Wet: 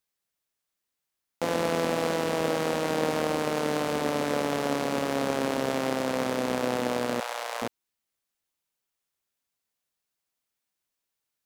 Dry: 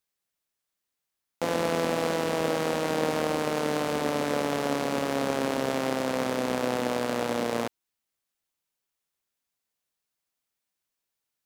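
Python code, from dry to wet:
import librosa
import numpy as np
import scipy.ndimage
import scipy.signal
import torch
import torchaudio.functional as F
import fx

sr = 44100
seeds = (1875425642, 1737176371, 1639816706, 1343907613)

y = fx.highpass(x, sr, hz=680.0, slope=24, at=(7.2, 7.62))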